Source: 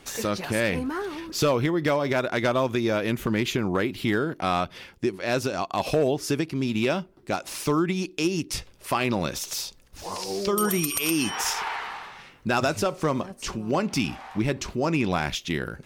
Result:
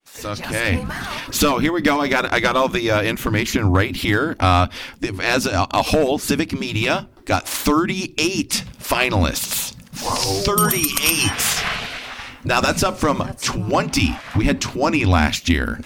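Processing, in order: fade-in on the opening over 1.12 s; resonant low shelf 260 Hz +11 dB, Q 3; in parallel at +2 dB: compression, threshold -25 dBFS, peak gain reduction 16 dB; on the sum: spectral gate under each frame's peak -10 dB weak; trim +7 dB

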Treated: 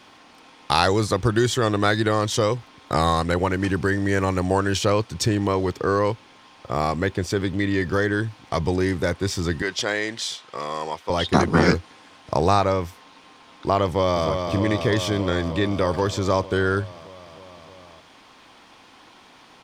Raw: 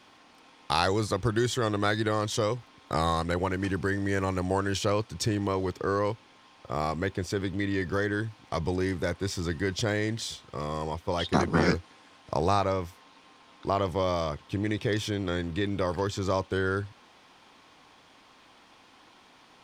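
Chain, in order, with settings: 9.62–11.10 s: frequency weighting A; 13.85–14.28 s: echo throw 310 ms, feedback 80%, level -5.5 dB; trim +6.5 dB

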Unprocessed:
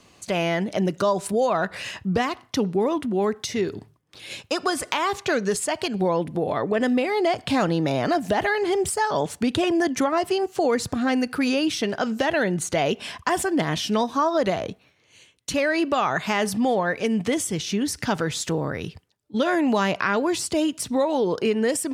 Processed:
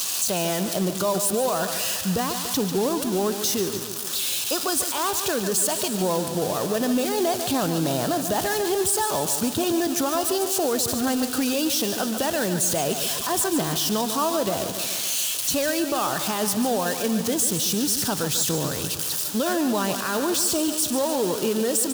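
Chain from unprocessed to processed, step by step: zero-crossing glitches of -13 dBFS; treble shelf 11 kHz -6.5 dB; short-mantissa float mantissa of 2-bit; on a send: feedback delay 145 ms, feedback 57%, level -10.5 dB; on the sum: peak limiter -14.5 dBFS, peak gain reduction 8.5 dB; peaking EQ 2.1 kHz -11 dB 0.44 oct

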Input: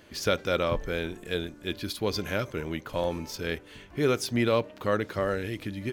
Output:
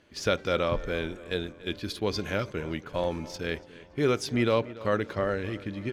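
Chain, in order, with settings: gate -38 dBFS, range -7 dB; treble shelf 9.2 kHz +6 dB, from 5.13 s -5 dB; wow and flutter 28 cents; distance through air 58 m; filtered feedback delay 286 ms, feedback 51%, low-pass 3.6 kHz, level -18 dB

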